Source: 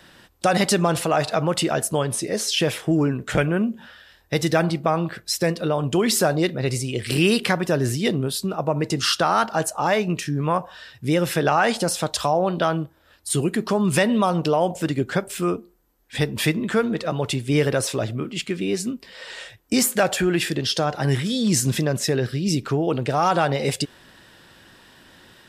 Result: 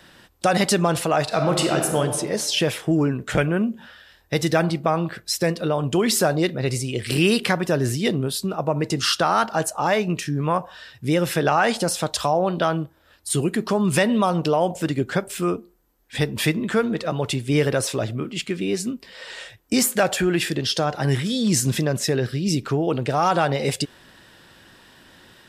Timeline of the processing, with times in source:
1.25–2.00 s: reverb throw, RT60 1.4 s, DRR 3 dB

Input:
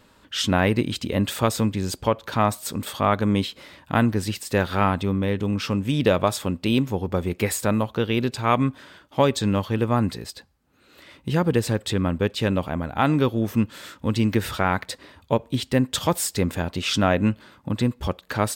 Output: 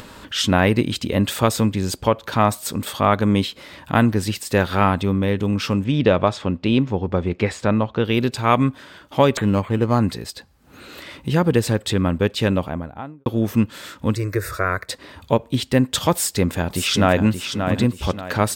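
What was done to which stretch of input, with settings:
5.84–8.05 s: distance through air 140 m
9.37–10.00 s: decimation joined by straight lines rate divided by 8×
12.45–13.26 s: studio fade out
14.15–14.89 s: static phaser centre 840 Hz, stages 6
16.12–17.26 s: echo throw 580 ms, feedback 35%, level -7 dB
whole clip: upward compressor, threshold -33 dBFS; trim +3.5 dB

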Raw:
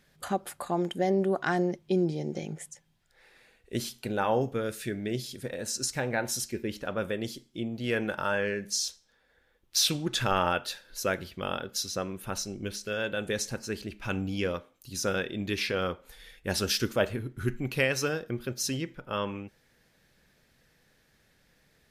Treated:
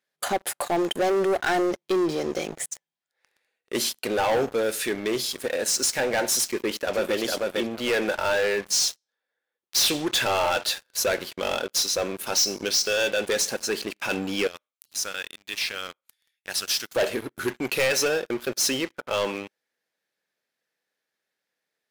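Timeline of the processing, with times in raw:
6.48–7.17 s: echo throw 450 ms, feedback 15%, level -4 dB
12.26–13.10 s: peaking EQ 5.3 kHz +14.5 dB
14.47–16.95 s: amplifier tone stack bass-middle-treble 5-5-5
whole clip: high-pass 400 Hz 12 dB/octave; dynamic bell 1.2 kHz, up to -7 dB, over -48 dBFS, Q 2.3; waveshaping leveller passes 5; trim -5.5 dB

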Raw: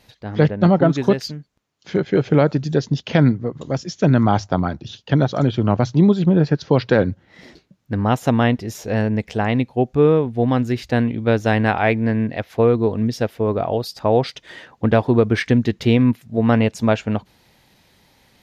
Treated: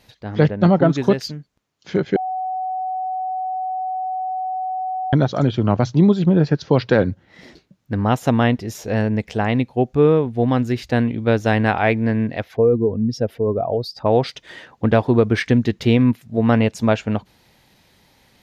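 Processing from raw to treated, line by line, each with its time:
2.16–5.13 s: bleep 748 Hz -21.5 dBFS
12.48–14.06 s: spectral contrast enhancement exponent 1.6

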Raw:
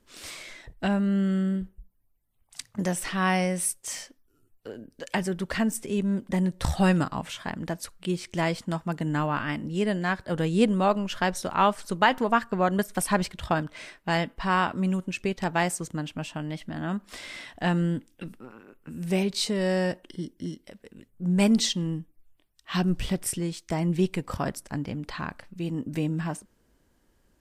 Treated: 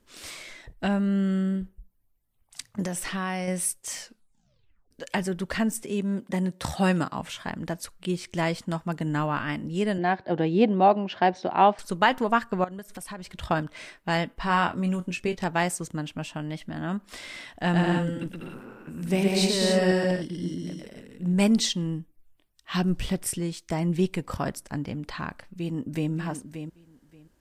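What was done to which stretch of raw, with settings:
2.82–3.48 s: compression, threshold -25 dBFS
4.00 s: tape stop 0.91 s
5.83–7.20 s: Bessel high-pass 150 Hz
9.98–11.79 s: cabinet simulation 140–4300 Hz, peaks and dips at 350 Hz +7 dB, 750 Hz +10 dB, 1.3 kHz -7 dB, 3.3 kHz -3 dB
12.64–13.33 s: compression 4:1, threshold -37 dBFS
14.39–15.44 s: doubling 23 ms -8 dB
17.57–21.34 s: bouncing-ball echo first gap 120 ms, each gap 0.65×, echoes 5, each echo -2 dB
25.44–26.11 s: echo throw 580 ms, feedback 15%, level -9 dB

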